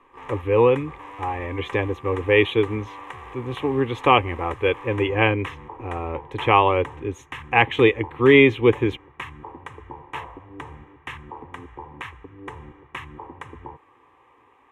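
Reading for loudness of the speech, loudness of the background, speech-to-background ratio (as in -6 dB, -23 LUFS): -20.5 LUFS, -39.0 LUFS, 18.5 dB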